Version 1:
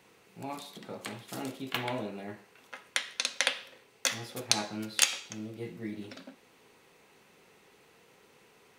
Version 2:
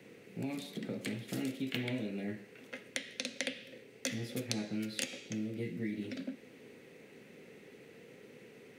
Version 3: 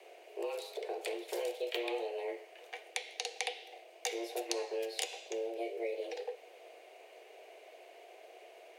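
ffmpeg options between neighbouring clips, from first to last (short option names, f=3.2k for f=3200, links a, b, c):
-filter_complex "[0:a]equalizer=f=125:t=o:w=1:g=9,equalizer=f=250:t=o:w=1:g=12,equalizer=f=500:t=o:w=1:g=10,equalizer=f=1k:t=o:w=1:g=-9,equalizer=f=2k:t=o:w=1:g=9,acrossover=split=310|770|1900[a][b][c][d];[a]acompressor=threshold=-35dB:ratio=4[e];[b]acompressor=threshold=-44dB:ratio=4[f];[c]acompressor=threshold=-54dB:ratio=4[g];[d]acompressor=threshold=-34dB:ratio=4[h];[e][f][g][h]amix=inputs=4:normalize=0,volume=-3dB"
-af "afreqshift=230"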